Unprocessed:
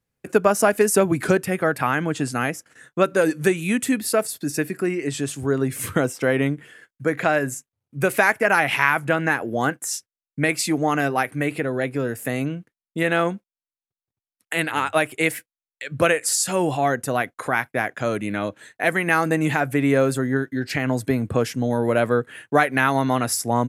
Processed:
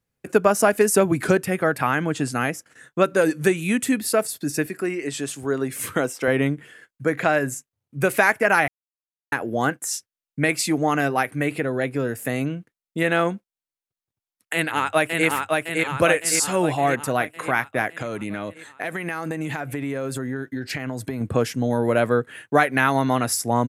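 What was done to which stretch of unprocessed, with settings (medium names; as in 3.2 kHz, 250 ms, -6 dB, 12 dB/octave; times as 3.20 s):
4.66–6.28 s: high-pass 290 Hz 6 dB/octave
8.68–9.32 s: mute
14.53–15.27 s: echo throw 560 ms, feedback 60%, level -2.5 dB
17.94–21.21 s: compression, threshold -24 dBFS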